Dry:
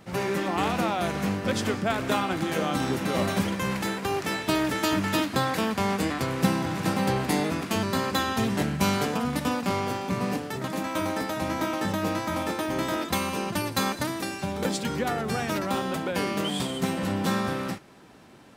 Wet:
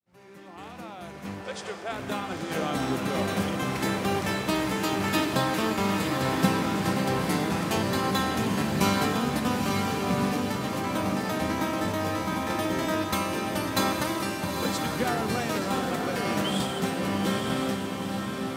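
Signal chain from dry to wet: opening faded in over 3.37 s; 1.41–1.92 brick-wall FIR band-pass 340–10000 Hz; on a send at -12 dB: reverb RT60 2.2 s, pre-delay 0.109 s; on the sum: tremolo saw down 0.8 Hz, depth 40%; diffused feedback echo 0.897 s, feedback 45%, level -3.5 dB

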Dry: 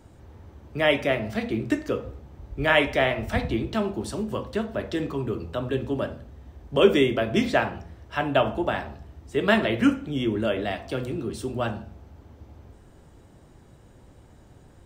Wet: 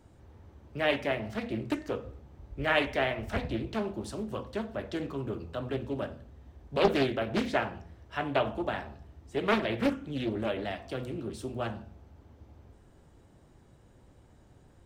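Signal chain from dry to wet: Doppler distortion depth 0.71 ms; gain -6.5 dB

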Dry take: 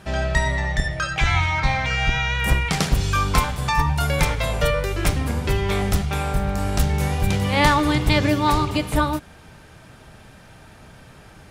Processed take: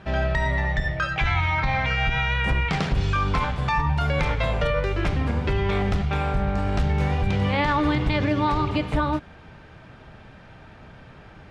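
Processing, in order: LPF 3200 Hz 12 dB/oct; limiter -13.5 dBFS, peak gain reduction 10 dB

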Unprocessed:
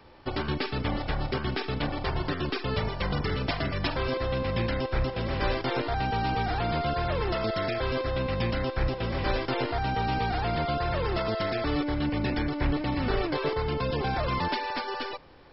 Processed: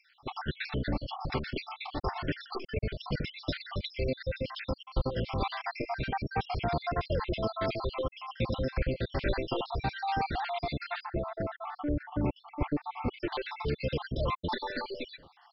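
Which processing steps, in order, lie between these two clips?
random spectral dropouts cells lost 65%; 11.04–13.19 LPF 1200 Hz -> 2000 Hz 12 dB/oct

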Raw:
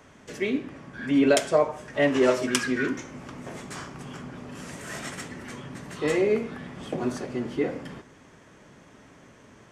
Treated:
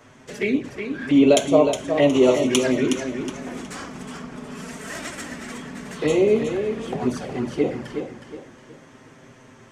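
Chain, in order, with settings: envelope flanger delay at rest 9.1 ms, full sweep at -22 dBFS; warbling echo 0.365 s, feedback 35%, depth 53 cents, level -7.5 dB; gain +6 dB

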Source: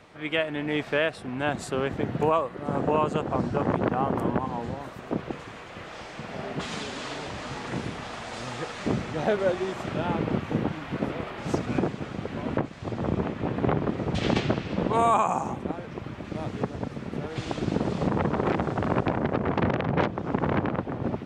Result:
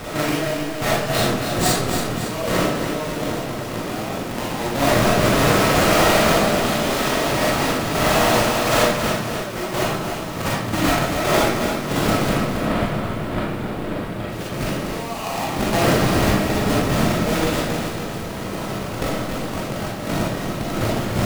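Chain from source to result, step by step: half-waves squared off; limiter -21.5 dBFS, peak gain reduction 9.5 dB; negative-ratio compressor -34 dBFS, ratio -0.5; 12.29–14.29 running mean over 7 samples; digital reverb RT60 0.67 s, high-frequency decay 0.85×, pre-delay 0 ms, DRR -5.5 dB; lo-fi delay 0.277 s, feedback 55%, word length 8-bit, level -7 dB; gain +7.5 dB

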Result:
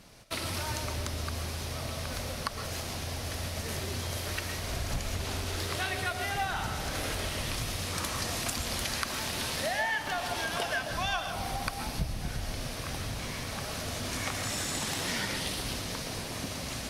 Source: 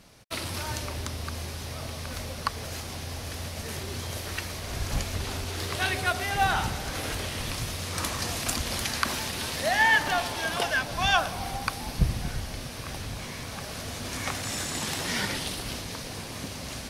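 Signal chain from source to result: compressor 4:1, threshold -30 dBFS, peak gain reduction 12 dB; reverb RT60 0.30 s, pre-delay 92 ms, DRR 7 dB

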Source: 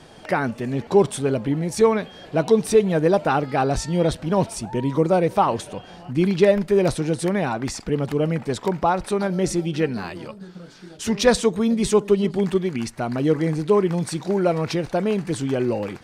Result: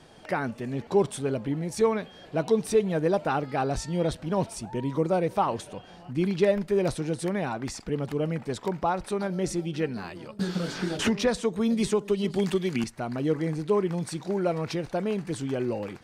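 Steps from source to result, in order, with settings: 10.39–12.84 three-band squash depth 100%; gain -6.5 dB

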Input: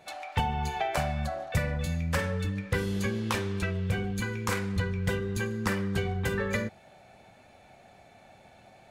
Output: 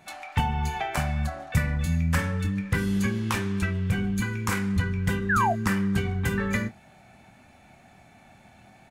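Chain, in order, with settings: graphic EQ 250/500/4000 Hz +4/-11/-5 dB; painted sound fall, 5.29–5.53, 630–1800 Hz -27 dBFS; doubler 25 ms -11 dB; gain +4 dB

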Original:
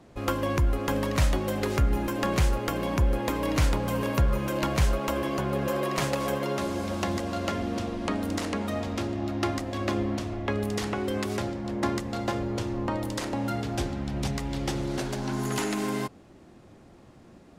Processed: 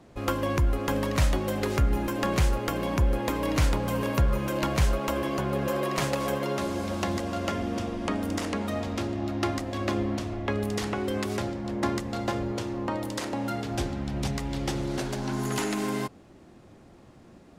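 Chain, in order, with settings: 7.28–8.49 notch 4100 Hz, Q 12; 12.52–13.7 low shelf 79 Hz -11.5 dB

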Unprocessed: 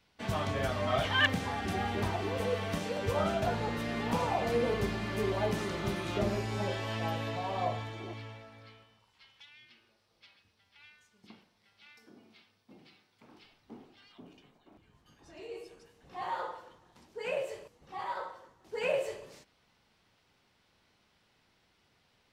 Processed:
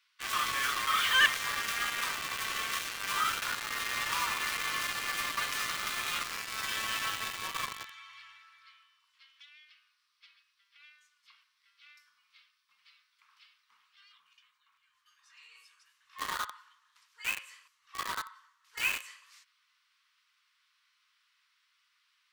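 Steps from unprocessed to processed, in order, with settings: elliptic high-pass 1100 Hz, stop band 40 dB; in parallel at -4 dB: companded quantiser 2-bit

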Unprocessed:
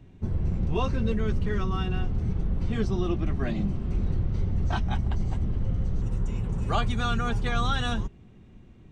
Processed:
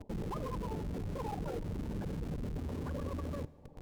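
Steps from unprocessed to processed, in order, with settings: steep low-pass 560 Hz; notches 60/120/180 Hz; resonator 63 Hz, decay 0.37 s, harmonics all, mix 60%; reverb removal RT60 1.2 s; reverse; compressor 6:1, threshold -41 dBFS, peak gain reduction 12.5 dB; reverse; spectral gate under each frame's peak -20 dB strong; in parallel at -6 dB: Schmitt trigger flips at -53 dBFS; on the sum: speed mistake 33 rpm record played at 78 rpm; reverb RT60 2.0 s, pre-delay 36 ms, DRR 19.5 dB; gain +3 dB

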